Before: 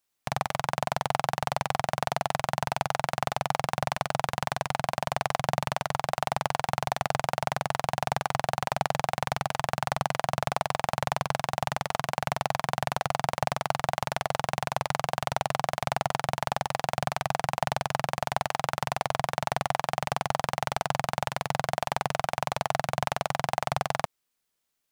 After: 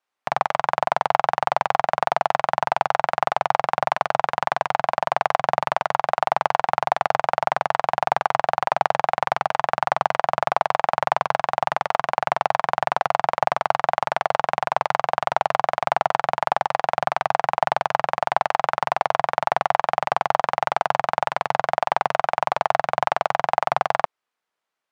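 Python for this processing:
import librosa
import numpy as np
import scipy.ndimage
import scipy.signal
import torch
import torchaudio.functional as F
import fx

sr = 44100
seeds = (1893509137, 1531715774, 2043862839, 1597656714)

p1 = np.sign(x) * np.maximum(np.abs(x) - 10.0 ** (-47.0 / 20.0), 0.0)
p2 = x + (p1 * librosa.db_to_amplitude(-8.0))
p3 = fx.bandpass_q(p2, sr, hz=990.0, q=0.78)
y = p3 * librosa.db_to_amplitude(6.5)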